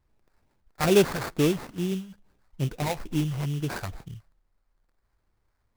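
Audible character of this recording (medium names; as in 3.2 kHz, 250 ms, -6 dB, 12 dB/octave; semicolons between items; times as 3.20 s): phasing stages 2, 2.3 Hz, lowest notch 260–3400 Hz; aliases and images of a low sample rate 3.1 kHz, jitter 20%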